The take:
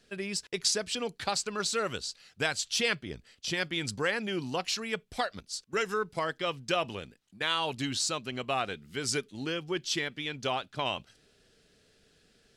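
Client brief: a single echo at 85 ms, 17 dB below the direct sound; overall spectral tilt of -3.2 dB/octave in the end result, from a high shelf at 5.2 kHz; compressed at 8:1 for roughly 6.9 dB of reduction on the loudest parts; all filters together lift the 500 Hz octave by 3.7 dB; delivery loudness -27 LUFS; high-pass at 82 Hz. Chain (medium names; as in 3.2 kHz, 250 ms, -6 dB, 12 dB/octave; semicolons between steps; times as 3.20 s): high-pass 82 Hz; peaking EQ 500 Hz +4.5 dB; treble shelf 5.2 kHz -6 dB; compression 8:1, threshold -30 dBFS; delay 85 ms -17 dB; trim +8.5 dB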